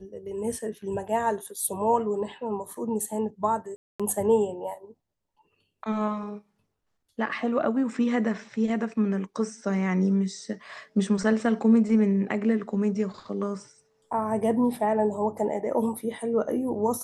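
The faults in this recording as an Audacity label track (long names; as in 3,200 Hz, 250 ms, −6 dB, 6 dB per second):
3.760000	4.000000	drop-out 236 ms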